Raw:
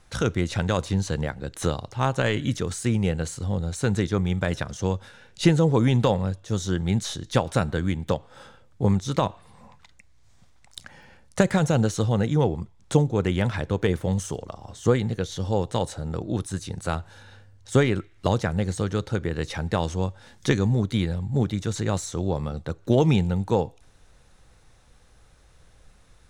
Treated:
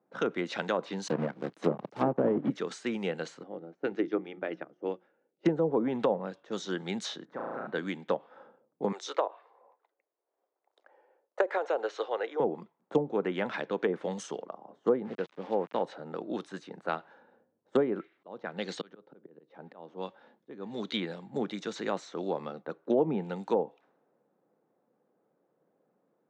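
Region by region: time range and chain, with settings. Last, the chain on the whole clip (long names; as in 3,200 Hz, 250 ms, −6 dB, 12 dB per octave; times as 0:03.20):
0:01.08–0:02.50: one scale factor per block 3 bits + spectral tilt −4.5 dB per octave + transient designer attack −4 dB, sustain −10 dB
0:03.43–0:05.45: loudspeaker in its box 100–5,800 Hz, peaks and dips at 210 Hz −7 dB, 320 Hz +9 dB, 1,000 Hz −8 dB, 1,600 Hz −4 dB, 3,900 Hz −9 dB + mains-hum notches 60/120/180/240/300/360 Hz + expander for the loud parts, over −42 dBFS
0:07.25–0:07.67: high shelf with overshoot 2,200 Hz −9.5 dB, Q 1.5 + flutter between parallel walls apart 6.1 metres, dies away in 1.1 s + downward compressor 5 to 1, threshold −29 dBFS
0:08.92–0:12.40: Butterworth high-pass 380 Hz + high-shelf EQ 5,100 Hz +6.5 dB
0:15.05–0:15.82: low-pass filter 1,700 Hz 6 dB per octave + centre clipping without the shift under −37 dBFS
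0:18.12–0:21.00: parametric band 3,600 Hz +8 dB 1.2 octaves + volume swells 487 ms
whole clip: low-pass that shuts in the quiet parts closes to 440 Hz, open at −19.5 dBFS; Bessel high-pass filter 330 Hz, order 8; treble cut that deepens with the level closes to 730 Hz, closed at −20.5 dBFS; level −2 dB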